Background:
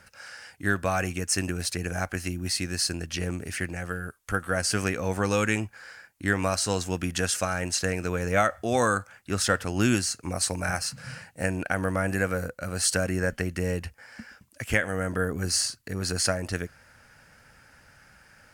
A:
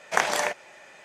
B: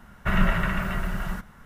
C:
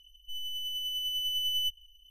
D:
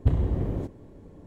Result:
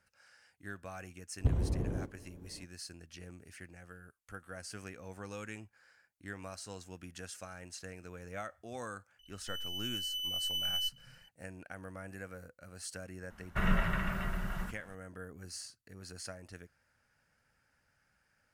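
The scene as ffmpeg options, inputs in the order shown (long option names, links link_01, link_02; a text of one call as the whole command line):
ffmpeg -i bed.wav -i cue0.wav -i cue1.wav -i cue2.wav -i cue3.wav -filter_complex "[0:a]volume=-19.5dB[link_01];[4:a]atrim=end=1.26,asetpts=PTS-STARTPTS,volume=-7dB,afade=type=in:duration=0.004:curve=hsin,afade=type=out:start_time=1.256:duration=0.004:curve=hsin,adelay=1390[link_02];[3:a]atrim=end=2.1,asetpts=PTS-STARTPTS,volume=-4dB,afade=type=in:duration=0.004:curve=hsin,afade=type=out:start_time=2.096:duration=0.004:curve=hsin,adelay=9190[link_03];[2:a]atrim=end=1.65,asetpts=PTS-STARTPTS,volume=-8dB,afade=type=in:duration=0.004:curve=hsin,afade=type=out:start_time=1.646:duration=0.004:curve=hsin,adelay=13300[link_04];[link_01][link_02][link_03][link_04]amix=inputs=4:normalize=0" out.wav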